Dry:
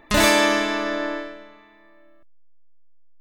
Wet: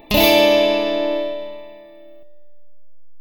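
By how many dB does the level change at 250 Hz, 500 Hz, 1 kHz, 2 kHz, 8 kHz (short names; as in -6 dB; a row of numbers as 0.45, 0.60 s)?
+3.5 dB, +8.5 dB, +0.5 dB, -1.0 dB, n/a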